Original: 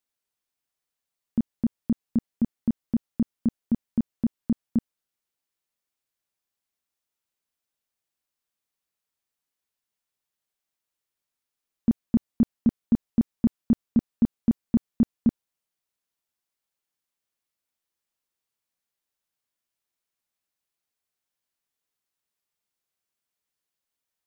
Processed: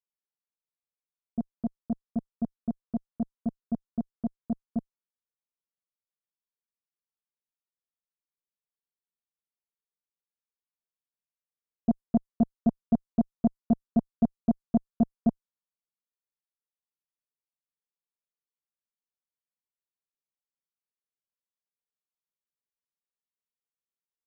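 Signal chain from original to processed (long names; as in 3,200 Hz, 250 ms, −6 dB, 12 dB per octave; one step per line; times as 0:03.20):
low-pass that shuts in the quiet parts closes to 890 Hz, open at −21 dBFS
phaser with its sweep stopped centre 460 Hz, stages 8
harmonic generator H 3 −13 dB, 4 −39 dB, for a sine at −14 dBFS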